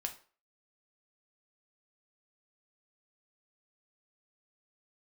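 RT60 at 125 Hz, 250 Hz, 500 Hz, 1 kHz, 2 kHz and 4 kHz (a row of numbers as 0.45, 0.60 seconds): 0.30, 0.35, 0.40, 0.40, 0.35, 0.35 seconds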